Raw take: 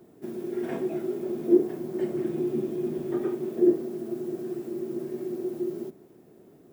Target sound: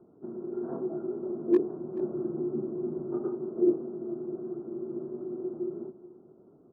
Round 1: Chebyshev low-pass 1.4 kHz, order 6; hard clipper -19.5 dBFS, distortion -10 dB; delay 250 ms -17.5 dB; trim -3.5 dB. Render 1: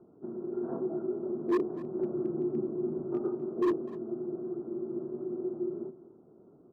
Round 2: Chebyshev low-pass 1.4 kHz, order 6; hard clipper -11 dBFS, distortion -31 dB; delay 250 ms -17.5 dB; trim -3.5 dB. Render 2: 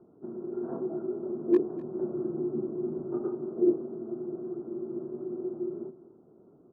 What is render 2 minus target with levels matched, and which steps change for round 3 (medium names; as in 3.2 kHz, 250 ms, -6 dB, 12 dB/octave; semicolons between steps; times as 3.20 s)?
echo 181 ms early
change: delay 431 ms -17.5 dB